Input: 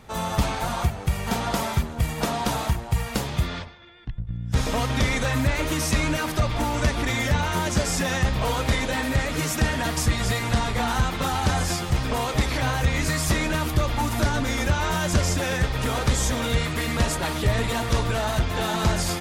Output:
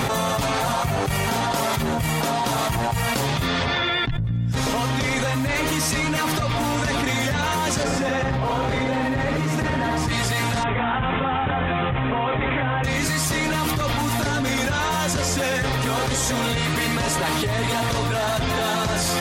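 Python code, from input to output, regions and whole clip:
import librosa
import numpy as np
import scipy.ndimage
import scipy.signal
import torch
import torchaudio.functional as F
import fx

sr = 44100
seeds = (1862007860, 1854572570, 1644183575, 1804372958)

y = fx.chain(x, sr, fx.lowpass(hz=1500.0, slope=6),
    fx.overload_stage(gain_db=17.0),
    fx.echo_single(ms=77, db=-5.0), at=(7.83, 10.08))
y = fx.chain(y, sr, fx.lowpass(hz=3000.0, slope=24),
    fx.resample_bad(factor=6, down='none', up='filtered'), at=(10.63, 12.84))
y = fx.highpass(y, sr, hz=120.0, slope=6)
y = y + 0.43 * np.pad(y, (int(7.4 * sr / 1000.0), 0))[:len(y)]
y = fx.env_flatten(y, sr, amount_pct=100)
y = F.gain(torch.from_numpy(y), -3.0).numpy()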